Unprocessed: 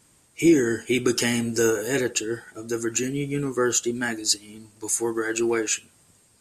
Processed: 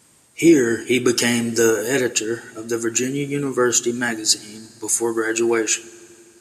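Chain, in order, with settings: high-pass 130 Hz 6 dB/octave; reverberation RT60 2.6 s, pre-delay 4 ms, DRR 20 dB; trim +5 dB

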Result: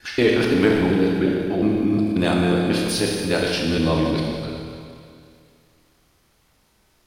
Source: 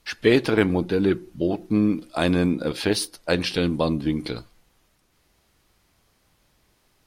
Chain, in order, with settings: time reversed locally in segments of 180 ms; Schroeder reverb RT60 2.3 s, combs from 25 ms, DRR 0 dB; transient shaper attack -2 dB, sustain +3 dB

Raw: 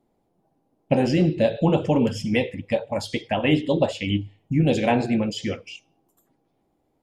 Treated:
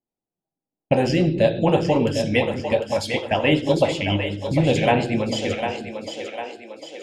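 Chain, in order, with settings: gate -38 dBFS, range -26 dB; two-band feedback delay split 390 Hz, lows 182 ms, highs 751 ms, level -7 dB; dynamic bell 220 Hz, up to -6 dB, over -34 dBFS, Q 1.1; trim +3.5 dB

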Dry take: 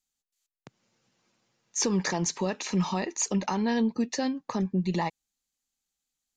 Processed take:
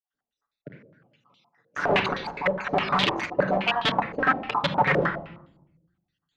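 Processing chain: random holes in the spectrogram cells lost 61%; integer overflow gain 27.5 dB; high-pass 120 Hz 6 dB/octave; reverberation RT60 0.80 s, pre-delay 7 ms, DRR 1.5 dB; step-sequenced low-pass 9.7 Hz 510–3500 Hz; trim +7.5 dB

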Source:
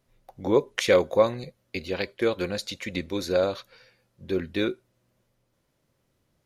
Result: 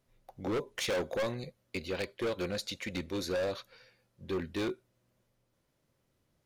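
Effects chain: overload inside the chain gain 25 dB; trim -4 dB

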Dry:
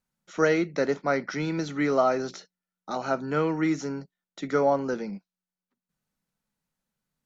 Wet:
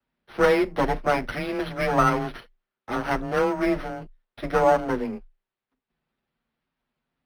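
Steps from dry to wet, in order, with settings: comb filter that takes the minimum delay 8.6 ms; frequency shift +20 Hz; decimation joined by straight lines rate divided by 6×; trim +5 dB

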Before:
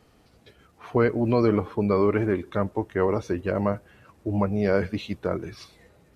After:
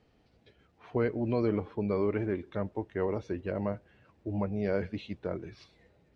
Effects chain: low-pass 4.4 kHz 12 dB/octave; peaking EQ 1.2 kHz -6 dB 0.56 oct; trim -7.5 dB

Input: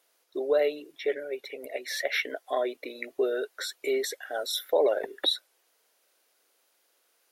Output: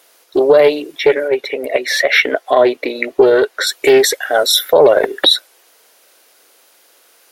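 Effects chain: 1.28–3.67 s: treble shelf 5.8 kHz -9 dB; loudness maximiser +19 dB; loudspeaker Doppler distortion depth 0.15 ms

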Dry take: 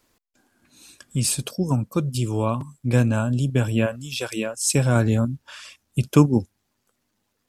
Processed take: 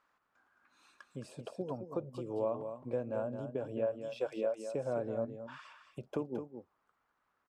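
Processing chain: compression 5:1, threshold -23 dBFS, peak gain reduction 13 dB; added noise brown -59 dBFS; auto-wah 550–1300 Hz, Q 2.6, down, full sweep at -24.5 dBFS; on a send: delay 217 ms -8.5 dB

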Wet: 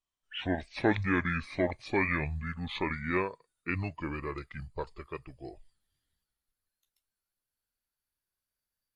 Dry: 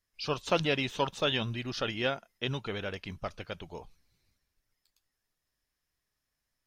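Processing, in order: gliding tape speed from 60% -> 89%; spectral noise reduction 9 dB

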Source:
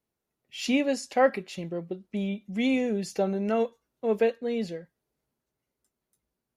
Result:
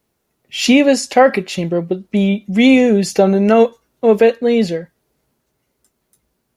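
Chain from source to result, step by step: loudness maximiser +16.5 dB; trim -1 dB

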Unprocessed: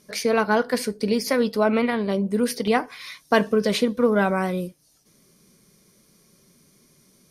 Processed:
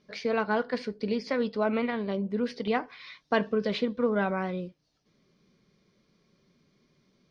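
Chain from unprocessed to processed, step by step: low-pass 4.4 kHz 24 dB/octave; trim -7 dB

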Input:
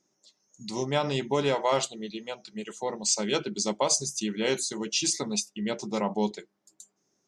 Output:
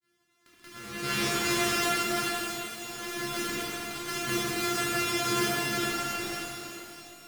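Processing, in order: sorted samples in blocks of 128 samples; bass shelf 370 Hz -10 dB; slow attack 467 ms; granulator, pitch spread up and down by 0 st; in parallel at -6 dB: word length cut 8-bit, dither none; on the sum: high-order bell 720 Hz -10.5 dB 1.1 oct; pitch-shifted reverb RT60 2.9 s, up +12 st, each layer -8 dB, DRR -9.5 dB

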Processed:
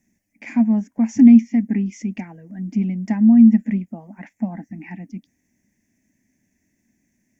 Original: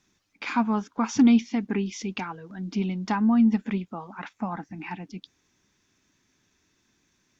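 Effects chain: FFT filter 150 Hz 0 dB, 230 Hz +9 dB, 430 Hz -9 dB, 630 Hz +2 dB, 1.3 kHz -24 dB, 1.9 kHz +3 dB, 3.8 kHz -23 dB, 5.7 kHz -6 dB, 9.4 kHz +6 dB; trim +1 dB

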